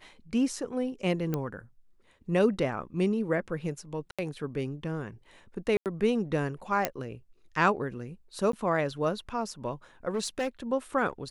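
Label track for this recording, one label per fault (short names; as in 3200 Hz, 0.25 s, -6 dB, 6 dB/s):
1.340000	1.340000	pop -17 dBFS
4.110000	4.190000	gap 76 ms
5.770000	5.860000	gap 88 ms
6.850000	6.850000	pop -10 dBFS
8.520000	8.530000	gap
10.140000	10.480000	clipped -25.5 dBFS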